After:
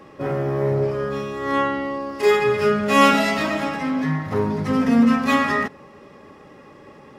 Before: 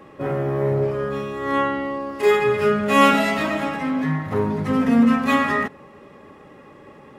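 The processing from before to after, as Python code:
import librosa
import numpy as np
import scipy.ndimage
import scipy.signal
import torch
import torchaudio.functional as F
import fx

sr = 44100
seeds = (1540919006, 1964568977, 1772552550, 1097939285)

y = fx.peak_eq(x, sr, hz=5200.0, db=7.5, octaves=0.57)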